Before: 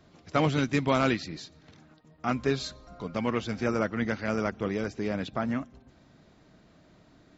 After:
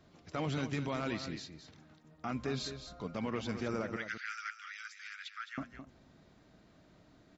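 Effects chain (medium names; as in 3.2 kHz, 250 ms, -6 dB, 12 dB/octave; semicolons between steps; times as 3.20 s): 3.96–5.58 s: steep high-pass 1.3 kHz 72 dB/octave; peak limiter -21.5 dBFS, peak gain reduction 9.5 dB; on a send: delay 214 ms -9.5 dB; on the sum: trim -4.5 dB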